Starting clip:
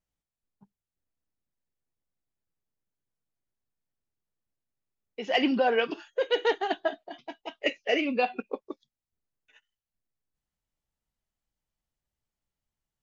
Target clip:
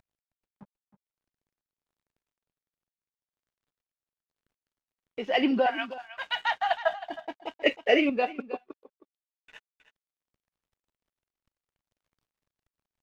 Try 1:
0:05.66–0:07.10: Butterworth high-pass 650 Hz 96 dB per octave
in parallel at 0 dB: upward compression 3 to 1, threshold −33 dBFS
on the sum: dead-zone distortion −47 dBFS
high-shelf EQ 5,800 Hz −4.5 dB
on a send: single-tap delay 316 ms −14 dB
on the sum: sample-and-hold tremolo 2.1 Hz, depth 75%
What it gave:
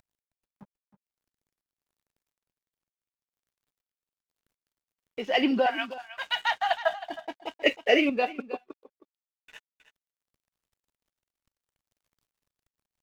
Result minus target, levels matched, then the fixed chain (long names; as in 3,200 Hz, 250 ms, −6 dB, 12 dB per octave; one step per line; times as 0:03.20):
8,000 Hz band +5.5 dB
0:05.66–0:07.10: Butterworth high-pass 650 Hz 96 dB per octave
in parallel at 0 dB: upward compression 3 to 1, threshold −33 dBFS
on the sum: dead-zone distortion −47 dBFS
high-shelf EQ 5,800 Hz −16 dB
on a send: single-tap delay 316 ms −14 dB
on the sum: sample-and-hold tremolo 2.1 Hz, depth 75%